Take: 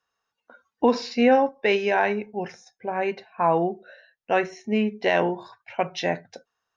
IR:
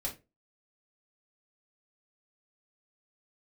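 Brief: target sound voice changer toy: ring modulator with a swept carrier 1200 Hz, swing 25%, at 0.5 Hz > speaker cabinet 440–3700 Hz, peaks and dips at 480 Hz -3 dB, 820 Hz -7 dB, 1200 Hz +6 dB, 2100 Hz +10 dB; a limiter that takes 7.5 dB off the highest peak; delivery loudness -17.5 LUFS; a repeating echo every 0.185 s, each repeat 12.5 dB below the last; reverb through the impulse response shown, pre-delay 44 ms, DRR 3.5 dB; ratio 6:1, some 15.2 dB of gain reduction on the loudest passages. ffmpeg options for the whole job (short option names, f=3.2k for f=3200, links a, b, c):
-filter_complex "[0:a]acompressor=threshold=-30dB:ratio=6,alimiter=level_in=1dB:limit=-24dB:level=0:latency=1,volume=-1dB,aecho=1:1:185|370|555:0.237|0.0569|0.0137,asplit=2[a][b];[1:a]atrim=start_sample=2205,adelay=44[c];[b][c]afir=irnorm=-1:irlink=0,volume=-4.5dB[d];[a][d]amix=inputs=2:normalize=0,aeval=exprs='val(0)*sin(2*PI*1200*n/s+1200*0.25/0.5*sin(2*PI*0.5*n/s))':c=same,highpass=440,equalizer=f=480:t=q:w=4:g=-3,equalizer=f=820:t=q:w=4:g=-7,equalizer=f=1.2k:t=q:w=4:g=6,equalizer=f=2.1k:t=q:w=4:g=10,lowpass=f=3.7k:w=0.5412,lowpass=f=3.7k:w=1.3066,volume=16dB"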